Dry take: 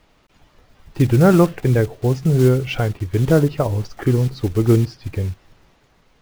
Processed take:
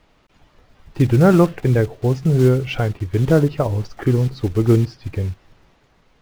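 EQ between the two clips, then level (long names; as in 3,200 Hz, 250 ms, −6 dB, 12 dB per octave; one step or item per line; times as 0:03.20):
high-shelf EQ 6,900 Hz −6.5 dB
0.0 dB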